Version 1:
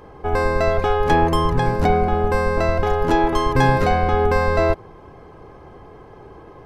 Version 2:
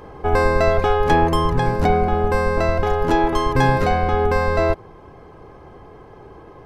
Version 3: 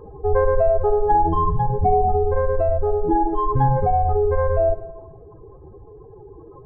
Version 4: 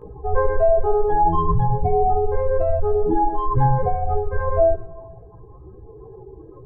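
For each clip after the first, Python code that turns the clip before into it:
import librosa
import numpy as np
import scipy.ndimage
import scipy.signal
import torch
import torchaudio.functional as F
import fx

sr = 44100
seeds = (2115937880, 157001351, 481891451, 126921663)

y1 = fx.rider(x, sr, range_db=10, speed_s=2.0)
y2 = fx.spec_expand(y1, sr, power=2.9)
y2 = y2 + 10.0 ** (-14.5 / 20.0) * np.pad(y2, (int(74 * sr / 1000.0), 0))[:len(y2)]
y2 = fx.rev_plate(y2, sr, seeds[0], rt60_s=1.2, hf_ratio=0.8, predelay_ms=80, drr_db=16.0)
y3 = fx.chorus_voices(y2, sr, voices=2, hz=0.33, base_ms=17, depth_ms=1.4, mix_pct=60)
y3 = y3 * librosa.db_to_amplitude(3.0)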